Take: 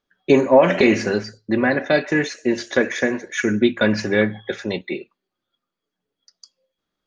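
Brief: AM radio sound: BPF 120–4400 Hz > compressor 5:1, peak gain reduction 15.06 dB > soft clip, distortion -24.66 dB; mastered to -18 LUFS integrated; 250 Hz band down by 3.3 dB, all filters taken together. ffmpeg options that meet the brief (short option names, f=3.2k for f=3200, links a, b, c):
-af "highpass=120,lowpass=4.4k,equalizer=f=250:t=o:g=-4,acompressor=threshold=-25dB:ratio=5,asoftclip=threshold=-15dB,volume=12.5dB"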